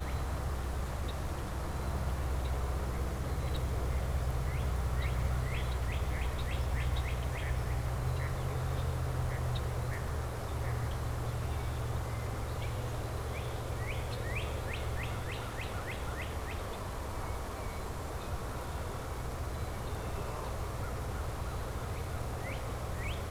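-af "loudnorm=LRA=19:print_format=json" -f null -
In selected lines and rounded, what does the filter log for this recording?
"input_i" : "-37.2",
"input_tp" : "-20.7",
"input_lra" : "4.3",
"input_thresh" : "-47.2",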